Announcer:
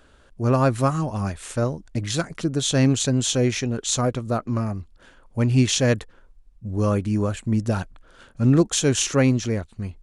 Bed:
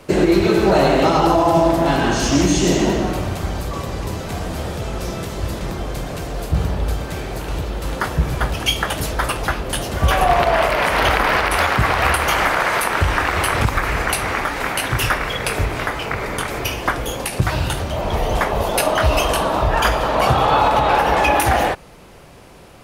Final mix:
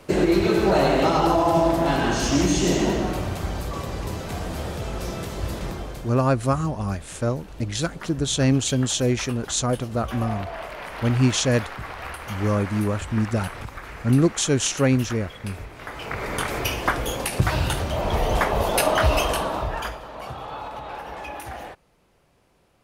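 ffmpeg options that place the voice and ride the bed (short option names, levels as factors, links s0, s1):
-filter_complex "[0:a]adelay=5650,volume=0.891[s0];[1:a]volume=3.55,afade=t=out:st=5.65:d=0.55:silence=0.211349,afade=t=in:st=15.78:d=0.65:silence=0.16788,afade=t=out:st=19:d=1.01:silence=0.141254[s1];[s0][s1]amix=inputs=2:normalize=0"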